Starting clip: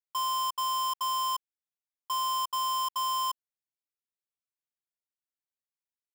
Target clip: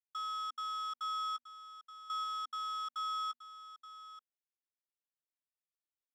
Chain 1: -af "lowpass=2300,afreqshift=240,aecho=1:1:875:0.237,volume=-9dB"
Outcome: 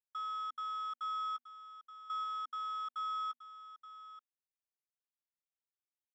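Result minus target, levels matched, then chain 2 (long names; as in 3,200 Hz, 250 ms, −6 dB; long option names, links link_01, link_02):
4,000 Hz band −5.5 dB
-af "lowpass=4700,afreqshift=240,aecho=1:1:875:0.237,volume=-9dB"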